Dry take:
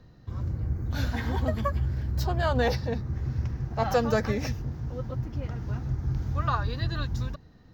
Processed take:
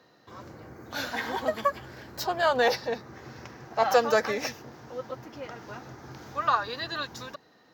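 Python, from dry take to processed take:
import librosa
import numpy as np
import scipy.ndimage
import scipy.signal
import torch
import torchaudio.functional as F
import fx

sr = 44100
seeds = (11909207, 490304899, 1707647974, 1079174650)

y = scipy.signal.sosfilt(scipy.signal.butter(2, 460.0, 'highpass', fs=sr, output='sos'), x)
y = F.gain(torch.from_numpy(y), 5.0).numpy()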